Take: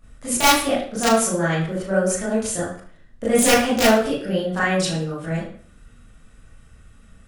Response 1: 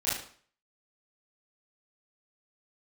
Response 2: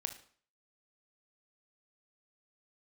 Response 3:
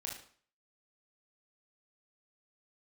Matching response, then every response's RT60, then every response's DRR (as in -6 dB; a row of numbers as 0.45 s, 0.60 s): 1; 0.50 s, 0.50 s, 0.50 s; -11.0 dB, 7.0 dB, -2.0 dB